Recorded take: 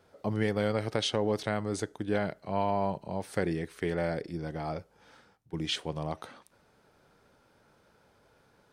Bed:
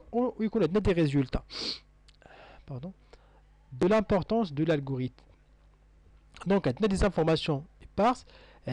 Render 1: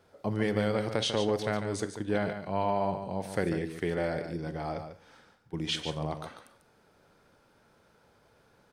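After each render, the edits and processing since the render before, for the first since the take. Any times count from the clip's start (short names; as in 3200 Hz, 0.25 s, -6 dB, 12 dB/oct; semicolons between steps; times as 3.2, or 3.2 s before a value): echo 0.145 s -8.5 dB; Schroeder reverb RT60 0.43 s, combs from 31 ms, DRR 14.5 dB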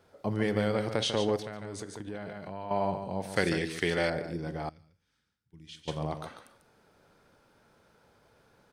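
1.36–2.71 compressor 4:1, threshold -36 dBFS; 3.36–4.1 bell 4600 Hz +13 dB 2.9 oct; 4.69–5.88 passive tone stack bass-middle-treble 6-0-2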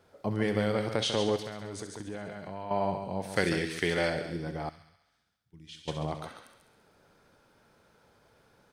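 thin delay 67 ms, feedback 67%, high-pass 1800 Hz, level -8.5 dB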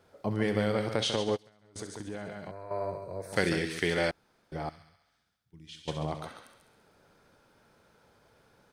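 1.16–1.76 upward expander 2.5:1, over -41 dBFS; 2.51–3.33 fixed phaser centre 820 Hz, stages 6; 4.11–4.52 room tone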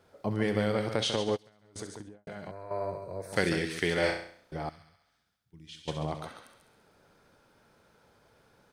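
1.86–2.27 studio fade out; 3.99–4.54 flutter echo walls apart 5.7 m, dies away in 0.54 s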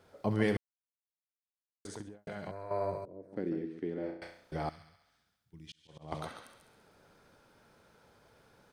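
0.57–1.85 mute; 3.05–4.22 band-pass 280 Hz, Q 2.7; 5.62–6.12 auto swell 0.468 s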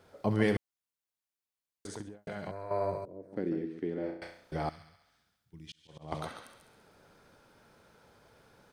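gain +2 dB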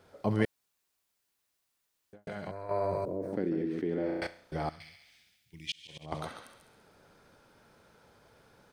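0.45–2.13 room tone; 2.69–4.27 fast leveller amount 70%; 4.8–6.06 resonant high shelf 1700 Hz +9.5 dB, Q 3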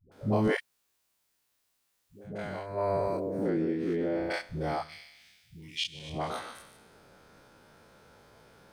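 spectral dilation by 60 ms; dispersion highs, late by 0.119 s, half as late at 350 Hz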